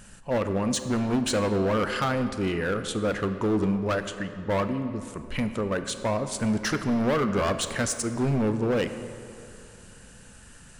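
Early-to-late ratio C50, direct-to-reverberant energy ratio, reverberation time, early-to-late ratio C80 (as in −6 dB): 9.5 dB, 9.0 dB, 2.7 s, 10.5 dB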